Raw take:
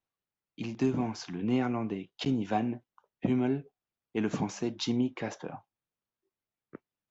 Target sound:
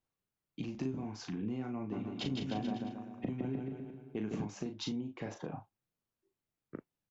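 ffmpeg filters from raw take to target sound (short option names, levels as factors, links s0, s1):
-filter_complex "[0:a]lowshelf=f=380:g=8,acompressor=threshold=0.02:ratio=6,asplit=2[s0][s1];[s1]adelay=38,volume=0.501[s2];[s0][s2]amix=inputs=2:normalize=0,asplit=3[s3][s4][s5];[s3]afade=t=out:st=1.91:d=0.02[s6];[s4]aecho=1:1:160|304|433.6|550.2|655.2:0.631|0.398|0.251|0.158|0.1,afade=t=in:st=1.91:d=0.02,afade=t=out:st=4.44:d=0.02[s7];[s5]afade=t=in:st=4.44:d=0.02[s8];[s6][s7][s8]amix=inputs=3:normalize=0,volume=0.75"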